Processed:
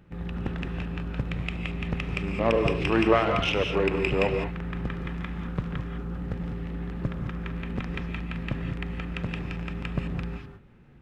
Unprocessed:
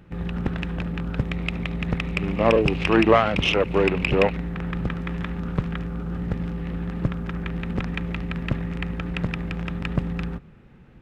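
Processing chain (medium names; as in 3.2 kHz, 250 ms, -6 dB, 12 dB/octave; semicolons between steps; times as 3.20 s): gated-style reverb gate 230 ms rising, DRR 4.5 dB; trim -5.5 dB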